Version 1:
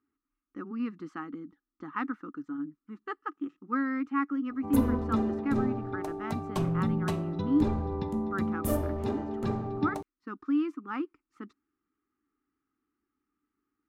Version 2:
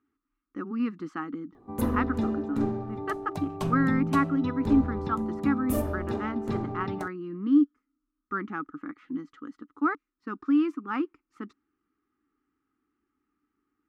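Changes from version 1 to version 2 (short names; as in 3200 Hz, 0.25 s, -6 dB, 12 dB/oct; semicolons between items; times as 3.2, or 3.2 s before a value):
speech +4.5 dB; background: entry -2.95 s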